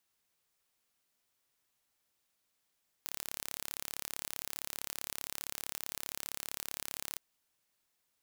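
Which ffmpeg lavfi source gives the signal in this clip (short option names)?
-f lavfi -i "aevalsrc='0.266*eq(mod(n,1249),0)':d=4.11:s=44100"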